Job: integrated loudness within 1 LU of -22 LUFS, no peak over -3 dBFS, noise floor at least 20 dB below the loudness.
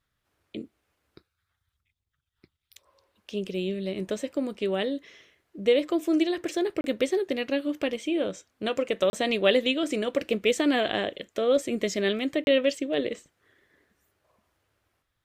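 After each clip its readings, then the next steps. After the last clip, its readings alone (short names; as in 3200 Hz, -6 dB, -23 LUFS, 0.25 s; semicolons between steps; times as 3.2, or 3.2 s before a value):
dropouts 3; longest dropout 31 ms; loudness -27.0 LUFS; peak -6.5 dBFS; loudness target -22.0 LUFS
-> interpolate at 6.81/9.1/12.44, 31 ms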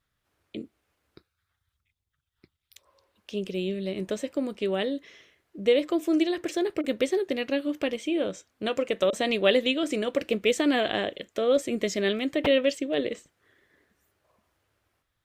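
dropouts 0; loudness -27.0 LUFS; peak -6.5 dBFS; loudness target -22.0 LUFS
-> gain +5 dB; limiter -3 dBFS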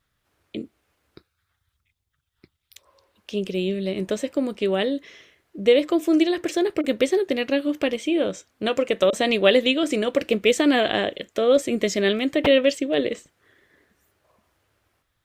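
loudness -22.0 LUFS; peak -3.0 dBFS; noise floor -76 dBFS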